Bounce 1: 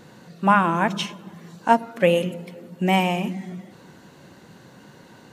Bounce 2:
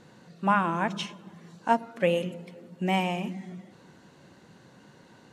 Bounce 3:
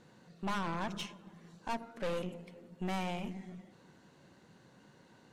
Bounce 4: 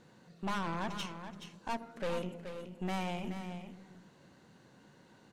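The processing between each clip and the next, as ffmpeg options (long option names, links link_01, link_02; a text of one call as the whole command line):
ffmpeg -i in.wav -af "lowpass=10000,volume=-6.5dB" out.wav
ffmpeg -i in.wav -af "aeval=exprs='(tanh(28.2*val(0)+0.65)-tanh(0.65))/28.2':channel_layout=same,volume=-3.5dB" out.wav
ffmpeg -i in.wav -af "aecho=1:1:426:0.335" out.wav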